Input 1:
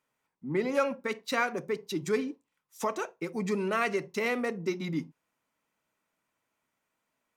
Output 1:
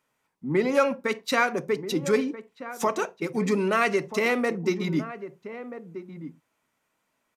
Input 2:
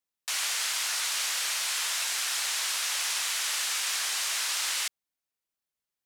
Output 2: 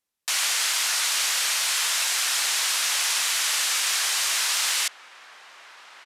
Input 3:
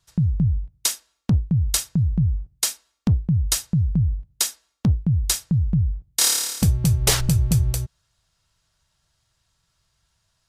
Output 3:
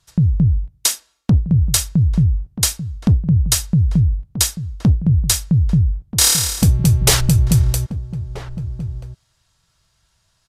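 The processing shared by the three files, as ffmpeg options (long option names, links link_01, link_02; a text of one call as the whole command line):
ffmpeg -i in.wav -filter_complex "[0:a]acontrast=46,asplit=2[link_01][link_02];[link_02]adelay=1283,volume=-12dB,highshelf=frequency=4000:gain=-28.9[link_03];[link_01][link_03]amix=inputs=2:normalize=0,aresample=32000,aresample=44100" out.wav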